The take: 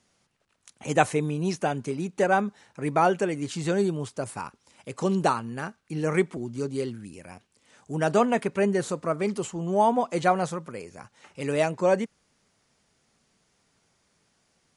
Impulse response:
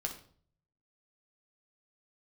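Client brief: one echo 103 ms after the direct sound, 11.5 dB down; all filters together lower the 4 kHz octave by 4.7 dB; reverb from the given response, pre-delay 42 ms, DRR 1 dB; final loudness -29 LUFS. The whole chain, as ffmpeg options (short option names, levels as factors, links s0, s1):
-filter_complex "[0:a]equalizer=f=4000:t=o:g=-6.5,aecho=1:1:103:0.266,asplit=2[s0][s1];[1:a]atrim=start_sample=2205,adelay=42[s2];[s1][s2]afir=irnorm=-1:irlink=0,volume=0.794[s3];[s0][s3]amix=inputs=2:normalize=0,volume=0.531"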